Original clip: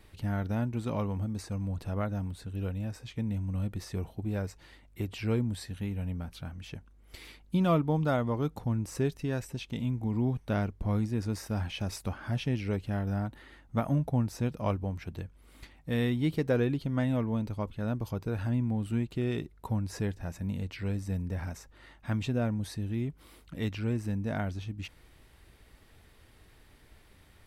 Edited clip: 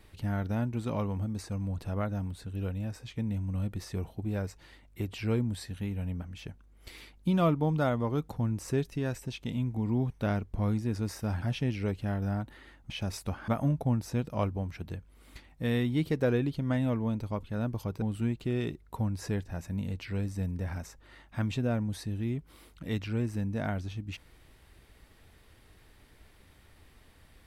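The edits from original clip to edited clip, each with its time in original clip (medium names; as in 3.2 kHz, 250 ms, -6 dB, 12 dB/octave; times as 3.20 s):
6.22–6.49 s: delete
11.69–12.27 s: move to 13.75 s
18.29–18.73 s: delete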